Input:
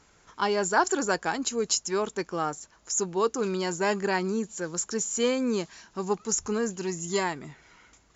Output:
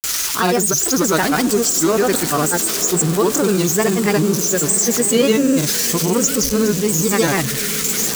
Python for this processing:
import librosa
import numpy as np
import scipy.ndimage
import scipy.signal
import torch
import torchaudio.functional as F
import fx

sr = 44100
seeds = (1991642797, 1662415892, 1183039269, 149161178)

p1 = x + 0.5 * 10.0 ** (-24.0 / 20.0) * np.diff(np.sign(x), prepend=np.sign(x[:1]))
p2 = fx.low_shelf(p1, sr, hz=240.0, db=7.5)
p3 = fx.notch(p2, sr, hz=900.0, q=5.2)
p4 = fx.over_compress(p3, sr, threshold_db=-31.0, ratio=-1.0)
p5 = p3 + (p4 * 10.0 ** (-2.0 / 20.0))
p6 = fx.granulator(p5, sr, seeds[0], grain_ms=100.0, per_s=20.0, spray_ms=100.0, spread_st=3)
p7 = p6 + fx.echo_diffused(p6, sr, ms=945, feedback_pct=45, wet_db=-11.5, dry=0)
y = p7 * 10.0 ** (8.0 / 20.0)